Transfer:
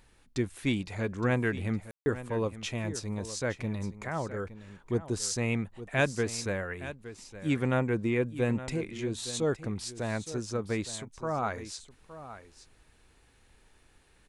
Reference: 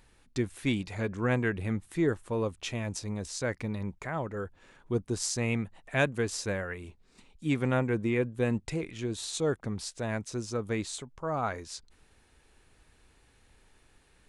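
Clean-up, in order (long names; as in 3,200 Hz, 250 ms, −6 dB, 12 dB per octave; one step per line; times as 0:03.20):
ambience match 0:01.91–0:02.06
echo removal 866 ms −14 dB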